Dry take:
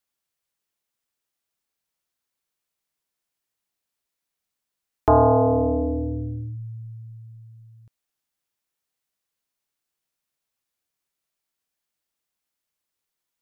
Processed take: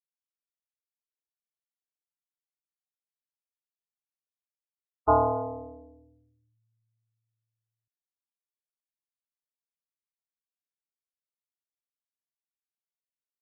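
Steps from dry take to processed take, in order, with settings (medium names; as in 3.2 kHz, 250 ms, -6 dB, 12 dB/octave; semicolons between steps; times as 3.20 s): tilt shelf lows -9 dB, about 1.1 kHz; loudest bins only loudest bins 32; upward expansion 2.5:1, over -39 dBFS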